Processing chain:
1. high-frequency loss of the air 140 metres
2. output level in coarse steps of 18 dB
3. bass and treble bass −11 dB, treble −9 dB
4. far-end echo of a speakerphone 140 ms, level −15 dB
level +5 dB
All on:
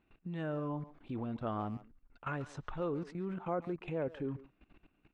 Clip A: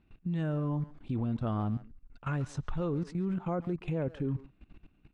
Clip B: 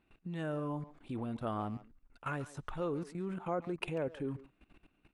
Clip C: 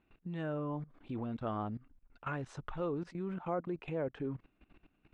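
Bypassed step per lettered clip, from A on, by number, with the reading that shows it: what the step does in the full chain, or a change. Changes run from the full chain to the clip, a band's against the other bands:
3, change in crest factor −3.5 dB
1, 4 kHz band +6.5 dB
4, echo-to-direct ratio −24.5 dB to none audible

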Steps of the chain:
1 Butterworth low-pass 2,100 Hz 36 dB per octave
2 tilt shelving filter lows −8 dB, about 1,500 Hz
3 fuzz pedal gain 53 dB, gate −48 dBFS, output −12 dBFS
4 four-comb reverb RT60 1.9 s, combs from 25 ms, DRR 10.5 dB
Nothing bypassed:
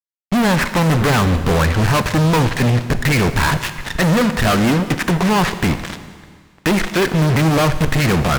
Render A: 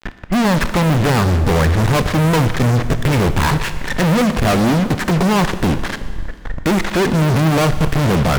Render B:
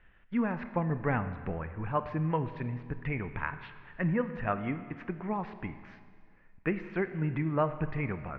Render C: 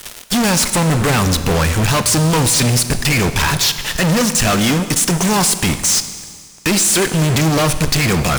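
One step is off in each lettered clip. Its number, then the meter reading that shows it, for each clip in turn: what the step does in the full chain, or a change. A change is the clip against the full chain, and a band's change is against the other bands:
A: 2, 2 kHz band −2.5 dB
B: 3, distortion level −2 dB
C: 1, 8 kHz band +14.5 dB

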